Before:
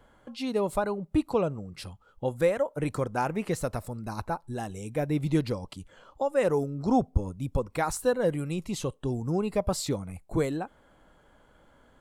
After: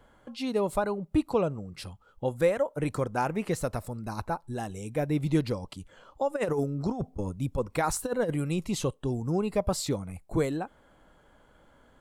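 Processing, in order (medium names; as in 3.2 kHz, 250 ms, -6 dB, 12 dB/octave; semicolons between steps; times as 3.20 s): 6.30–8.91 s: compressor with a negative ratio -26 dBFS, ratio -0.5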